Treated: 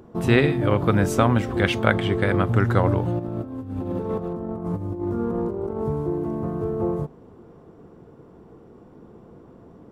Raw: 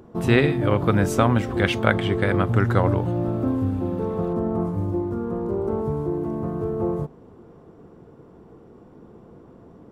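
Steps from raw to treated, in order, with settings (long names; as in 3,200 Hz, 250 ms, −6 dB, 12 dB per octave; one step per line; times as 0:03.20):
0:03.19–0:05.88: compressor whose output falls as the input rises −27 dBFS, ratio −0.5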